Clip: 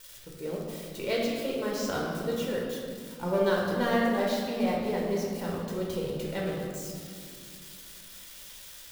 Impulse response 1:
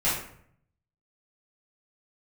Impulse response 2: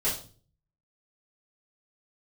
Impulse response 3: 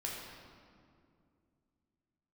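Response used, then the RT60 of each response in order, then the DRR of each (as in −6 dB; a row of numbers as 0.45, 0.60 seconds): 3; 0.65, 0.40, 2.4 seconds; −12.0, −10.5, −3.5 decibels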